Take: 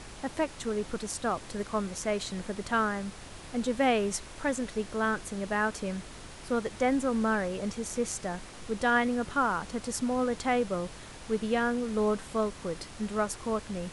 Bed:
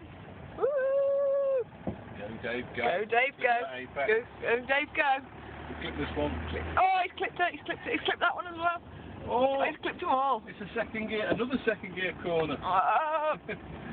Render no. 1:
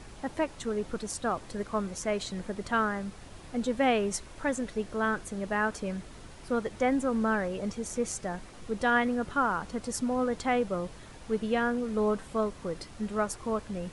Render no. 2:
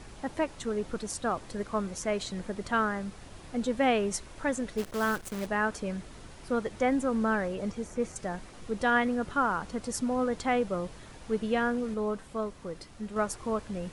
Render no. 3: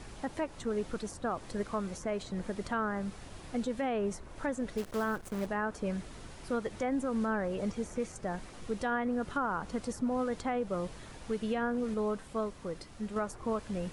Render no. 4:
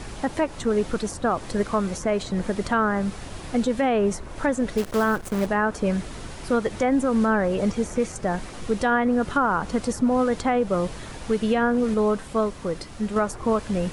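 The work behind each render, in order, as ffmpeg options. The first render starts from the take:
ffmpeg -i in.wav -af "afftdn=noise_reduction=6:noise_floor=-46" out.wav
ffmpeg -i in.wav -filter_complex "[0:a]asplit=3[link_01][link_02][link_03];[link_01]afade=type=out:start_time=4.77:duration=0.02[link_04];[link_02]acrusher=bits=7:dc=4:mix=0:aa=0.000001,afade=type=in:start_time=4.77:duration=0.02,afade=type=out:start_time=5.45:duration=0.02[link_05];[link_03]afade=type=in:start_time=5.45:duration=0.02[link_06];[link_04][link_05][link_06]amix=inputs=3:normalize=0,asettb=1/sr,asplit=3[link_07][link_08][link_09];[link_07]atrim=end=7.524[link_10];[link_08]atrim=start=7.52:end=8.16,asetpts=PTS-STARTPTS,afade=type=in:duration=0.004:curve=qsin,afade=type=out:start_time=0.636:duration=0.004:curve=qsin,acrossover=split=2500[link_11][link_12];[link_12]acompressor=threshold=-49dB:ratio=4:attack=1:release=60[link_13];[link_11][link_13]amix=inputs=2:normalize=0[link_14];[link_09]atrim=start=8.156[link_15];[link_10][link_14]acrossfade=duration=0.004:curve1=hsin:curve2=qsin[link_16];[link_16][link_15]acrossfade=duration=0.004:curve1=qsin:curve2=hsin,asplit=3[link_17][link_18][link_19];[link_17]atrim=end=11.942[link_20];[link_18]atrim=start=11.938:end=13.162,asetpts=PTS-STARTPTS,volume=-4dB[link_21];[link_19]atrim=start=13.158[link_22];[link_20][link_21]acrossfade=duration=0.004:curve1=hsin:curve2=hsin[link_23];[link_23][link_22]acrossfade=duration=0.004:curve1=hsin:curve2=hsin" out.wav
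ffmpeg -i in.wav -filter_complex "[0:a]acrossover=split=1600[link_01][link_02];[link_01]alimiter=level_in=0.5dB:limit=-24dB:level=0:latency=1:release=188,volume=-0.5dB[link_03];[link_02]acompressor=threshold=-46dB:ratio=10[link_04];[link_03][link_04]amix=inputs=2:normalize=0" out.wav
ffmpeg -i in.wav -af "volume=11dB" out.wav

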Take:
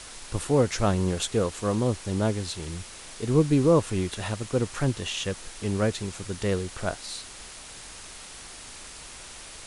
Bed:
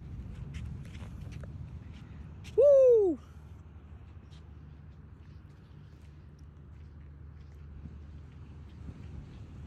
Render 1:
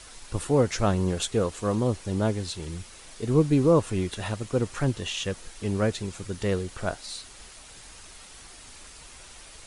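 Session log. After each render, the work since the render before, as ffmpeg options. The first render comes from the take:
ffmpeg -i in.wav -af "afftdn=noise_reduction=6:noise_floor=-44" out.wav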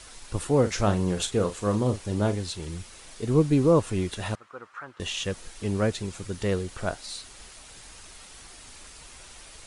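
ffmpeg -i in.wav -filter_complex "[0:a]asettb=1/sr,asplit=3[link_01][link_02][link_03];[link_01]atrim=end=0.604[link_04];[link_02]atrim=start=0.6:end=2.36,asetpts=PTS-STARTPTS,afade=type=in:duration=0.004:curve=qsin,afade=type=out:start_time=1.756:duration=0.004:curve=qsin,asplit=2[link_05][link_06];[link_06]adelay=39,volume=-10dB[link_07];[link_05][link_07]amix=inputs=2:normalize=0,atrim=end_sample=77616[link_08];[link_03]atrim=start=2.356[link_09];[link_04][link_08]acrossfade=duration=0.004:curve1=hsin:curve2=qsin[link_10];[link_10][link_09]acrossfade=duration=0.004:curve1=qsin:curve2=hsin,asettb=1/sr,asplit=3[link_11][link_12][link_13];[link_11]atrim=end=4.354[link_14];[link_12]atrim=start=4.35:end=5,asetpts=PTS-STARTPTS,afade=type=in:duration=0.004:curve=qsin,afade=type=out:start_time=0.646:duration=0.004:curve=qsin,bandpass=frequency=1300:width_type=q:width=2.9[link_15];[link_13]atrim=start=4.996[link_16];[link_14][link_15]acrossfade=duration=0.004:curve1=hsin:curve2=qsin[link_17];[link_17][link_16]acrossfade=duration=0.004:curve1=qsin:curve2=hsin" out.wav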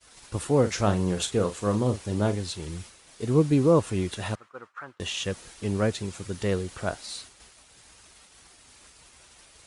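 ffmpeg -i in.wav -af "agate=range=-33dB:threshold=-40dB:ratio=3:detection=peak,highpass=53" out.wav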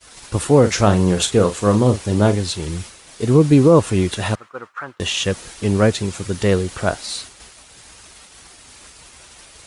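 ffmpeg -i in.wav -af "volume=10dB,alimiter=limit=-3dB:level=0:latency=1" out.wav

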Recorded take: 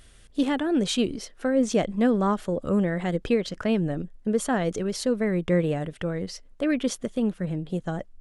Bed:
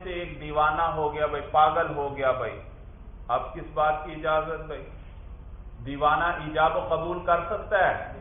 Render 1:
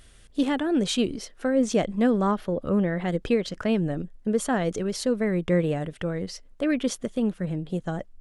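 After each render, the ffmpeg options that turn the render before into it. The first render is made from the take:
ffmpeg -i in.wav -filter_complex "[0:a]asettb=1/sr,asplit=3[link_01][link_02][link_03];[link_01]atrim=end=2.314[link_04];[link_02]atrim=start=2.31:end=3.08,asetpts=PTS-STARTPTS,afade=type=in:duration=0.004:curve=qsin,afade=type=out:start_time=0.766:duration=0.004:curve=qsin,equalizer=frequency=7800:width_type=o:width=0.68:gain=-13[link_05];[link_03]atrim=start=3.076[link_06];[link_04][link_05]acrossfade=duration=0.004:curve1=hsin:curve2=qsin[link_07];[link_07][link_06]acrossfade=duration=0.004:curve1=qsin:curve2=hsin" out.wav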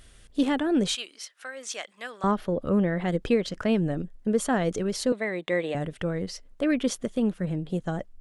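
ffmpeg -i in.wav -filter_complex "[0:a]asettb=1/sr,asplit=3[link_01][link_02][link_03];[link_01]atrim=end=0.954[link_04];[link_02]atrim=start=0.95:end=2.24,asetpts=PTS-STARTPTS,afade=type=in:duration=0.004:curve=qsin,afade=type=out:start_time=1.286:duration=0.004:curve=qsin,highpass=1400[link_05];[link_03]atrim=start=2.236[link_06];[link_04][link_05]acrossfade=duration=0.004:curve1=hsin:curve2=qsin[link_07];[link_07][link_06]acrossfade=duration=0.004:curve1=qsin:curve2=hsin,asettb=1/sr,asplit=3[link_08][link_09][link_10];[link_08]atrim=end=5.124[link_11];[link_09]atrim=start=5.12:end=5.75,asetpts=PTS-STARTPTS,afade=type=in:duration=0.004:curve=qsin,afade=type=out:start_time=0.626:duration=0.004:curve=qsin,highpass=380,equalizer=frequency=430:width_type=q:width=4:gain=-4,equalizer=frequency=750:width_type=q:width=4:gain=4,equalizer=frequency=1400:width_type=q:width=4:gain=-4,equalizer=frequency=2000:width_type=q:width=4:gain=6,equalizer=frequency=3800:width_type=q:width=4:gain=9,equalizer=frequency=5500:width_type=q:width=4:gain=-9,lowpass=frequency=9100:width=0.5412,lowpass=frequency=9100:width=1.3066[link_12];[link_10]atrim=start=5.746[link_13];[link_11][link_12]acrossfade=duration=0.004:curve1=hsin:curve2=qsin[link_14];[link_14][link_13]acrossfade=duration=0.004:curve1=qsin:curve2=hsin" out.wav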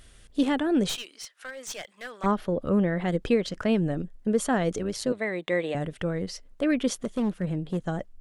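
ffmpeg -i in.wav -filter_complex "[0:a]asettb=1/sr,asplit=3[link_01][link_02][link_03];[link_01]atrim=end=0.894[link_04];[link_02]atrim=start=0.89:end=2.26,asetpts=PTS-STARTPTS,afade=type=in:duration=0.004:curve=qsin,afade=type=out:start_time=1.366:duration=0.004:curve=qsin,aeval=exprs='clip(val(0),-1,0.0168)':channel_layout=same[link_05];[link_03]atrim=start=2.256[link_06];[link_04][link_05]acrossfade=duration=0.004:curve1=hsin:curve2=qsin[link_07];[link_07][link_06]acrossfade=duration=0.004:curve1=qsin:curve2=hsin,asettb=1/sr,asplit=3[link_08][link_09][link_10];[link_08]atrim=end=4.784[link_11];[link_09]atrim=start=4.78:end=5.19,asetpts=PTS-STARTPTS,afade=type=in:duration=0.004:curve=qsin,afade=type=out:start_time=0.406:duration=0.004:curve=qsin,tremolo=f=110:d=0.519[link_12];[link_10]atrim=start=5.186[link_13];[link_11][link_12]acrossfade=duration=0.004:curve1=hsin:curve2=qsin[link_14];[link_14][link_13]acrossfade=duration=0.004:curve1=qsin:curve2=hsin,asettb=1/sr,asplit=3[link_15][link_16][link_17];[link_15]atrim=end=6.974[link_18];[link_16]atrim=start=6.97:end=7.85,asetpts=PTS-STARTPTS,afade=type=in:duration=0.004:curve=qsin,afade=type=out:start_time=0.876:duration=0.004:curve=qsin,asoftclip=type=hard:threshold=-22dB[link_19];[link_17]atrim=start=7.846[link_20];[link_18][link_19]acrossfade=duration=0.004:curve1=hsin:curve2=qsin[link_21];[link_21][link_20]acrossfade=duration=0.004:curve1=qsin:curve2=hsin" out.wav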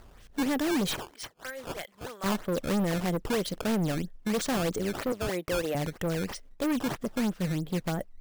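ffmpeg -i in.wav -af "acrusher=samples=13:mix=1:aa=0.000001:lfo=1:lforange=20.8:lforate=3.1,asoftclip=type=hard:threshold=-24.5dB" out.wav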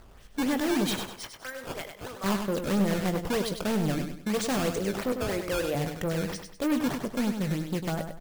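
ffmpeg -i in.wav -filter_complex "[0:a]asplit=2[link_01][link_02];[link_02]adelay=20,volume=-12dB[link_03];[link_01][link_03]amix=inputs=2:normalize=0,asplit=2[link_04][link_05];[link_05]aecho=0:1:99|198|297|396:0.447|0.156|0.0547|0.0192[link_06];[link_04][link_06]amix=inputs=2:normalize=0" out.wav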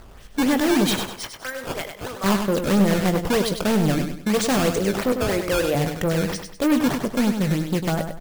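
ffmpeg -i in.wav -af "volume=7.5dB" out.wav

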